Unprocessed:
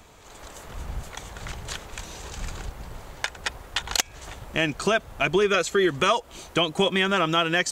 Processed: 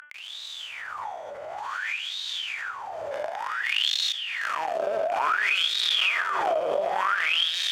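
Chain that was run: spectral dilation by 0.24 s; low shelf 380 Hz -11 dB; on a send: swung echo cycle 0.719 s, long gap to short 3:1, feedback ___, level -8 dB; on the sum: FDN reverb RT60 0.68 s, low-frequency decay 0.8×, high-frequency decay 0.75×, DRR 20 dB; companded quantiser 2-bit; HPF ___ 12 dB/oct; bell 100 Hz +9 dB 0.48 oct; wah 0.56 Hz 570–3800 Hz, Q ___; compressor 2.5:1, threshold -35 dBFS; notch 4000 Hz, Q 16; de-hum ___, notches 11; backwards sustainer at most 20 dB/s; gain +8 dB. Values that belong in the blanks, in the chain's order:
34%, 57 Hz, 14, 295.7 Hz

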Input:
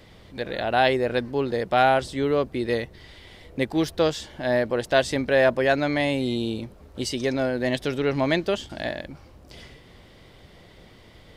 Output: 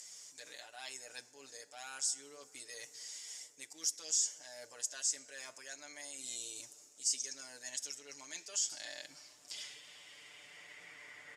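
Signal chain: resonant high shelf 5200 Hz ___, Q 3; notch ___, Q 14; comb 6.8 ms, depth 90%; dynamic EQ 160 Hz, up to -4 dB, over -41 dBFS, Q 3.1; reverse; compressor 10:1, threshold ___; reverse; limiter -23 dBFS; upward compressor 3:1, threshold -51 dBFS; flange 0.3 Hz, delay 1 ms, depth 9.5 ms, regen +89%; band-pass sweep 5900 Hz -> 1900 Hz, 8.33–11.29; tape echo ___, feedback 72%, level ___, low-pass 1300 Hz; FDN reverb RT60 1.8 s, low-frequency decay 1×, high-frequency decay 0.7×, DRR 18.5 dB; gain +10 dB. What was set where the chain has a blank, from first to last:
+10.5 dB, 6100 Hz, -29 dBFS, 0.316 s, -20 dB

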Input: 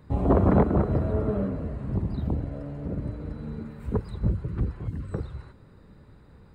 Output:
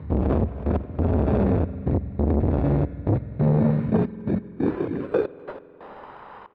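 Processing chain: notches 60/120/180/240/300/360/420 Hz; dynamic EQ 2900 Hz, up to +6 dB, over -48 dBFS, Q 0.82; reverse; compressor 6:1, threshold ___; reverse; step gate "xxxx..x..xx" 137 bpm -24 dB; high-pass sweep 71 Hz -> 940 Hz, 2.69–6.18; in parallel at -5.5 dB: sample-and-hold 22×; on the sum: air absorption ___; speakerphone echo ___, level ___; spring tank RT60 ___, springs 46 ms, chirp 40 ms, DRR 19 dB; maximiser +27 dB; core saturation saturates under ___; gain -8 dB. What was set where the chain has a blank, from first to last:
-36 dBFS, 480 m, 0.25 s, -28 dB, 3.2 s, 300 Hz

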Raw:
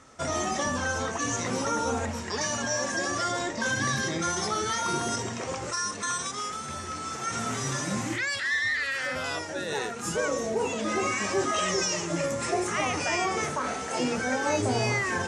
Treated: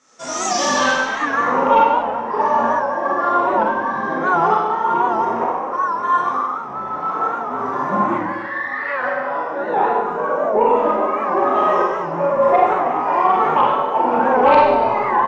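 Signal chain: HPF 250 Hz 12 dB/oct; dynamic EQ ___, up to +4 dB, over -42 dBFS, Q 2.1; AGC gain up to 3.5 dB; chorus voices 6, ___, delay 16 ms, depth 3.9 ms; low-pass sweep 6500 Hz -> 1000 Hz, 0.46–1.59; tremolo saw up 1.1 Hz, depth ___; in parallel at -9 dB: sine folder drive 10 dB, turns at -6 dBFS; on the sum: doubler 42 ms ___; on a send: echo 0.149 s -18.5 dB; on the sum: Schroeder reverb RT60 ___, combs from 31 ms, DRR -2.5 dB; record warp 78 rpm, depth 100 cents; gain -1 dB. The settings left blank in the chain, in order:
920 Hz, 0.59 Hz, 75%, -11 dB, 1.2 s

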